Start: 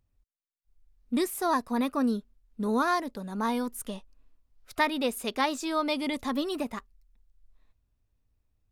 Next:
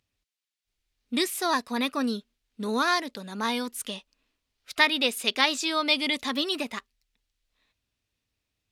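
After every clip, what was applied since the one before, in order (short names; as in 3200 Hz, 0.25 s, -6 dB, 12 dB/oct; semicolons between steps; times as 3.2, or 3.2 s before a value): weighting filter D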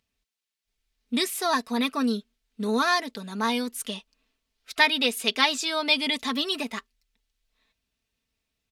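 comb 4.5 ms, depth 51%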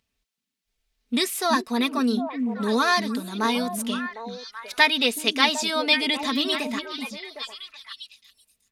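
delay with a stepping band-pass 0.378 s, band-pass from 230 Hz, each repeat 1.4 oct, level -3 dB; gain +2 dB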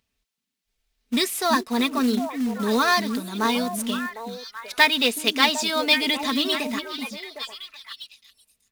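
short-mantissa float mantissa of 2-bit; gain +1 dB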